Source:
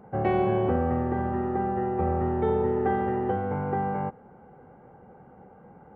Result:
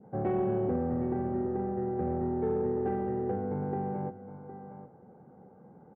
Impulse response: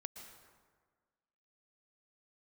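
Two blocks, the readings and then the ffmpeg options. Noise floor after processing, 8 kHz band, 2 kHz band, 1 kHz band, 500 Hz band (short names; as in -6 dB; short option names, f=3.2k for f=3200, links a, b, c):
-56 dBFS, n/a, -13.0 dB, -9.0 dB, -4.0 dB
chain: -af "highpass=130,lowpass=2.2k,tiltshelf=f=740:g=6.5,aecho=1:1:765:0.211,asoftclip=type=tanh:threshold=-14dB,adynamicequalizer=threshold=0.00631:dfrequency=1100:dqfactor=1.7:tfrequency=1100:tqfactor=1.7:attack=5:release=100:ratio=0.375:range=2.5:mode=cutabove:tftype=bell,volume=-6.5dB"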